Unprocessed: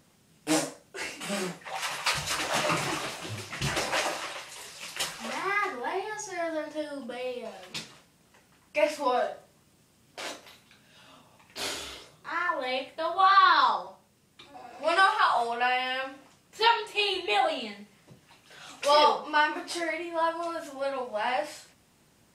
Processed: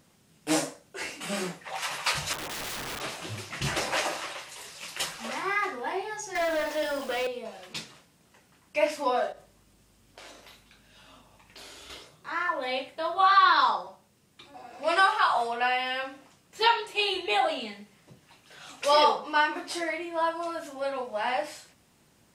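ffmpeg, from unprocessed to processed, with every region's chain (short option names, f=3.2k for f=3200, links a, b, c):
-filter_complex "[0:a]asettb=1/sr,asplit=3[a][b][c];[a]atrim=end=2.334[d];[b]atrim=start=2.33:end=3.01,asetpts=PTS-STARTPTS,afade=t=in:d=0.004:c=qsin,afade=t=out:st=0.676:d=0.004:c=qsin,lowpass=f=1.4k:w=0.5412,lowpass=f=1.4k:w=1.3066,aeval=exprs='(mod(35.5*val(0)+1,2)-1)/35.5':c=same[e];[c]atrim=start=3.006[f];[d][e]acrossfade=d=0.004:c1=hsin:c2=qsin[g];[g][f]acrossfade=d=0.004:c1=qsin:c2=hsin,asettb=1/sr,asplit=3[h][i][j];[h]atrim=end=6.354[k];[i]atrim=start=6.35:end=7.27,asetpts=PTS-STARTPTS,afade=t=in:d=0.004:c=qsin,afade=t=out:st=0.916:d=0.004:c=qsin,highpass=f=290:w=0.5412,highpass=f=290:w=1.3066,asplit=2[l][m];[m]highpass=f=720:p=1,volume=21dB,asoftclip=type=tanh:threshold=-21dB[n];[l][n]amix=inputs=2:normalize=0,lowpass=f=4.3k:p=1,volume=-6dB,acrusher=bits=8:dc=4:mix=0:aa=0.000001[o];[j]atrim=start=7.266[p];[k][o]acrossfade=d=0.004:c1=hsin:c2=qsin[q];[q][p]acrossfade=d=0.004:c1=qsin:c2=hsin,asettb=1/sr,asplit=3[r][s][t];[r]atrim=end=9.324[u];[s]atrim=start=9.32:end=11.9,asetpts=PTS-STARTPTS,afade=t=in:d=0.004:c=qsin,afade=t=out:st=2.576:d=0.004:c=qsin,acompressor=threshold=-44dB:ratio=6:attack=3.2:release=140:knee=1:detection=peak,aeval=exprs='val(0)+0.000562*(sin(2*PI*50*n/s)+sin(2*PI*2*50*n/s)/2+sin(2*PI*3*50*n/s)/3+sin(2*PI*4*50*n/s)/4+sin(2*PI*5*50*n/s)/5)':c=same[v];[t]atrim=start=11.896[w];[u][v]acrossfade=d=0.004:c1=hsin:c2=qsin[x];[x][w]acrossfade=d=0.004:c1=qsin:c2=hsin"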